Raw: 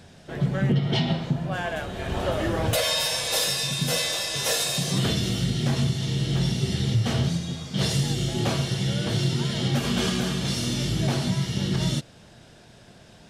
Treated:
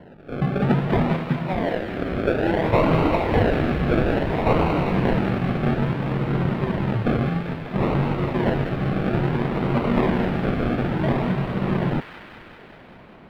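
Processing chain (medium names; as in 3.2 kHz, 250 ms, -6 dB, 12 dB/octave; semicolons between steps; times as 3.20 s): high-pass 200 Hz 12 dB/octave; decimation with a swept rate 36×, swing 60% 0.59 Hz; distance through air 480 m; feedback echo behind a high-pass 195 ms, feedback 73%, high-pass 1.6 kHz, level -5 dB; trim +7.5 dB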